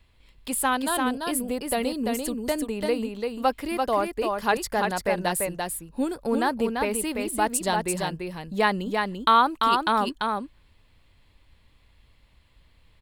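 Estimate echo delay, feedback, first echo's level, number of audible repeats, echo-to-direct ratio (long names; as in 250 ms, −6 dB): 341 ms, repeats not evenly spaced, −4.0 dB, 1, −4.0 dB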